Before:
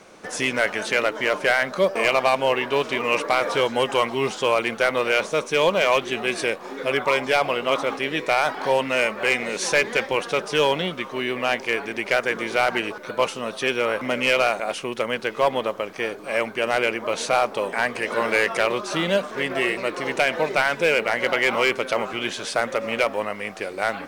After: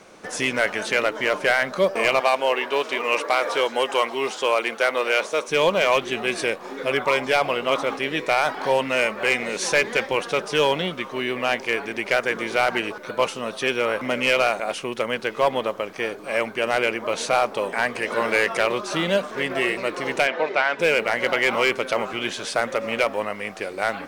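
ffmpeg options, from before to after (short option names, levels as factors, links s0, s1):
-filter_complex "[0:a]asettb=1/sr,asplit=3[s0][s1][s2];[s0]atrim=end=2.204[s3];[s1]atrim=start=2.2:end=5.48,asetpts=PTS-STARTPTS,afade=t=in:d=0.004:c=qsin,afade=t=out:st=3.276:d=0.004:c=qsin,highpass=340[s4];[s2]atrim=start=5.476[s5];[s3][s4]acrossfade=d=0.004:c1=hsin:c2=qsin[s6];[s6][s5]acrossfade=d=0.004:c1=qsin:c2=hsin,asettb=1/sr,asplit=3[s7][s8][s9];[s7]atrim=end=20.274[s10];[s8]atrim=start=20.27:end=20.79,asetpts=PTS-STARTPTS,afade=t=in:d=0.004:c=qsin,afade=t=out:st=0.516:d=0.004:c=qsin,highpass=300,lowpass=3700[s11];[s9]atrim=start=20.786[s12];[s10][s11]acrossfade=d=0.004:c1=hsin:c2=qsin[s13];[s13][s12]acrossfade=d=0.004:c1=qsin:c2=hsin"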